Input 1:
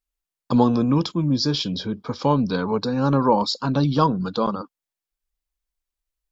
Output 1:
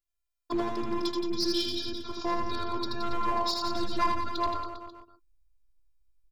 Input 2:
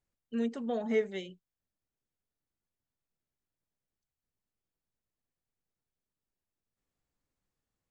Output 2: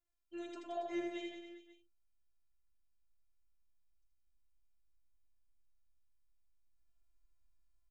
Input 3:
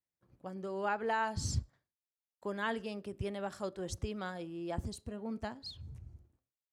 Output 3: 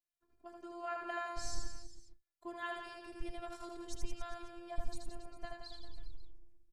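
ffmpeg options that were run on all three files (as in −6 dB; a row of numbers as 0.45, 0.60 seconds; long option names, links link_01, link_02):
-filter_complex "[0:a]asubboost=boost=9:cutoff=81,afftfilt=real='hypot(re,im)*cos(PI*b)':imag='0':win_size=512:overlap=0.75,aeval=exprs='clip(val(0),-1,0.112)':channel_layout=same,asplit=2[link_01][link_02];[link_02]aecho=0:1:80|172|277.8|399.5|539.4:0.631|0.398|0.251|0.158|0.1[link_03];[link_01][link_03]amix=inputs=2:normalize=0,volume=-2.5dB"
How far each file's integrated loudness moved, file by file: −9.5, −10.0, −7.5 LU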